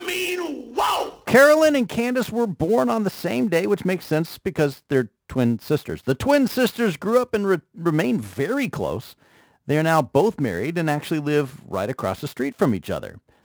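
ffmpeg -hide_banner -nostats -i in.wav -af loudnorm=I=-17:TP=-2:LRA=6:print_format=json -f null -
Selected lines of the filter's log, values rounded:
"input_i" : "-22.2",
"input_tp" : "-3.0",
"input_lra" : "5.6",
"input_thresh" : "-32.4",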